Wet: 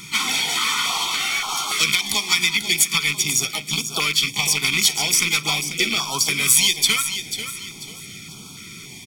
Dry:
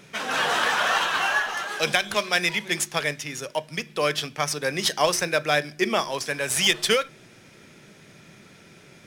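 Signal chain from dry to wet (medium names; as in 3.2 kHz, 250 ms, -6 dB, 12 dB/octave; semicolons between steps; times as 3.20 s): rattle on loud lows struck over -34 dBFS, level -15 dBFS; harmony voices +5 st -9 dB; comb 0.9 ms, depth 85%; compression, threshold -26 dBFS, peak gain reduction 13.5 dB; treble shelf 2.2 kHz +11.5 dB; band-stop 1.6 kHz, Q 5.3; on a send: feedback delay 491 ms, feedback 35%, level -10 dB; on the sum: step-sequenced notch 3.5 Hz 590–1900 Hz; trim +4 dB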